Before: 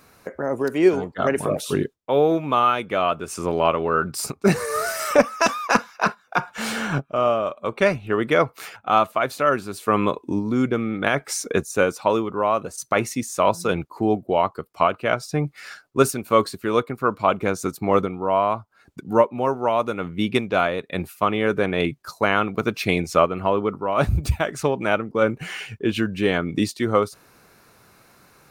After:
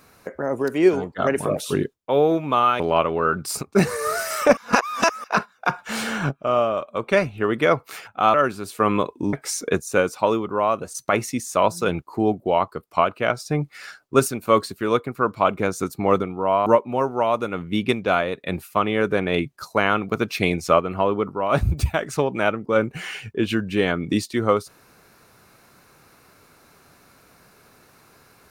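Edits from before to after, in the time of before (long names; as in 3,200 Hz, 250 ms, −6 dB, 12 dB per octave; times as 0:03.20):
0:02.80–0:03.49: remove
0:05.26–0:05.93: reverse
0:09.03–0:09.42: remove
0:10.41–0:11.16: remove
0:18.49–0:19.12: remove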